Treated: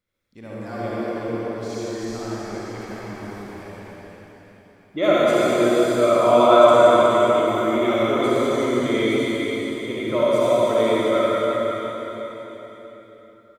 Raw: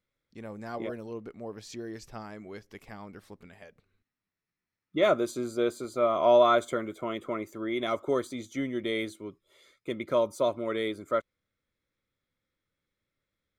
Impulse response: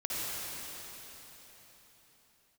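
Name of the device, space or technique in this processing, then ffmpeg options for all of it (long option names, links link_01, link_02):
cave: -filter_complex "[0:a]aecho=1:1:366:0.398[link_01];[1:a]atrim=start_sample=2205[link_02];[link_01][link_02]afir=irnorm=-1:irlink=0,volume=3.5dB"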